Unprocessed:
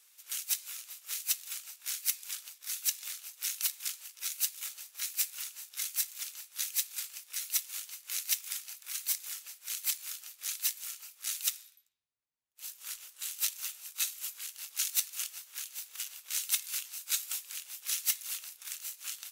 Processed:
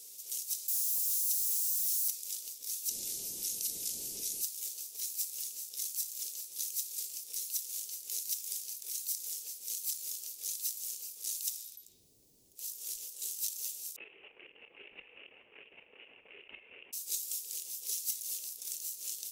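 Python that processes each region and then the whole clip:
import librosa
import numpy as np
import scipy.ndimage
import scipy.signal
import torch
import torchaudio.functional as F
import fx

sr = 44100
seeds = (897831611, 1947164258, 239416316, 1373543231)

y = fx.chain(x, sr, fx.crossing_spikes(level_db=-23.0),
    fx.highpass(hz=250.0, slope=12), at=(0.68, 2.08))
y = fx.chain(y, sr, fx.zero_step(step_db=-40.5),
    fx.brickwall_lowpass(high_hz=14000.0), at=(2.89, 4.42))
y = fx.chain(y, sr, fx.steep_lowpass(hz=2800.0, slope=96),
    fx.low_shelf(hz=400.0, db=-7.0),
    fx.level_steps(step_db=11), at=(13.96, 16.93))
y = fx.curve_eq(y, sr, hz=(110.0, 400.0, 1400.0, 5400.0), db=(0, 5, -29, -4))
y = fx.env_flatten(y, sr, amount_pct=50)
y = y * 10.0 ** (-4.0 / 20.0)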